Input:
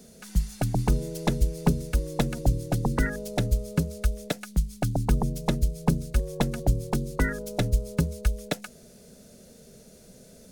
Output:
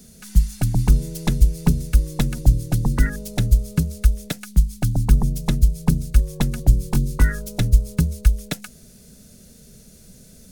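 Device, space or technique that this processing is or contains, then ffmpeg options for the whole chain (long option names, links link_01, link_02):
smiley-face EQ: -filter_complex "[0:a]asettb=1/sr,asplit=3[link_01][link_02][link_03];[link_01]atrim=end=6.714[link_04];[link_02]atrim=start=6.71:end=7.47,asetpts=PTS-STARTPTS,afade=type=in:duration=0.004:curve=qsin,afade=type=out:start_time=0.756:duration=0.004:curve=qsin,asplit=2[link_05][link_06];[link_06]adelay=21,volume=-6dB[link_07];[link_05][link_07]amix=inputs=2:normalize=0,atrim=end_sample=33516[link_08];[link_03]atrim=start=7.466[link_09];[link_04][link_08]acrossfade=duration=0.004:curve1=hsin:curve2=qsin[link_10];[link_10][link_09]acrossfade=duration=0.004:curve1=qsin:curve2=hsin,lowshelf=frequency=140:gain=7.5,equalizer=frequency=560:width_type=o:width=1.6:gain=-8.5,highshelf=frequency=8300:gain=5.5,volume=3dB"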